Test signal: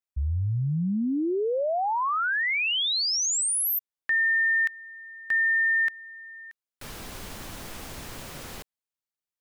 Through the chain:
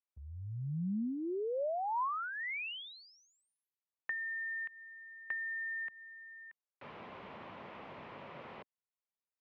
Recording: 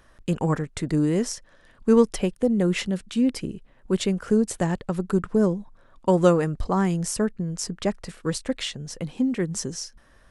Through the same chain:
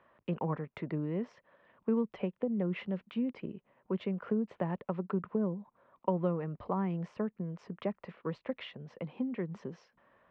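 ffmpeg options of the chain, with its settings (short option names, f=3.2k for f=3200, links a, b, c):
-filter_complex "[0:a]acrossover=split=240[a][b];[b]acompressor=threshold=-31dB:ratio=5:attack=42:release=329:knee=2.83:detection=peak[c];[a][c]amix=inputs=2:normalize=0,highpass=180,equalizer=f=290:t=q:w=4:g=-5,equalizer=f=580:t=q:w=4:g=3,equalizer=f=1k:t=q:w=4:g=5,equalizer=f=1.6k:t=q:w=4:g=-5,lowpass=f=2.6k:w=0.5412,lowpass=f=2.6k:w=1.3066,volume=-6dB"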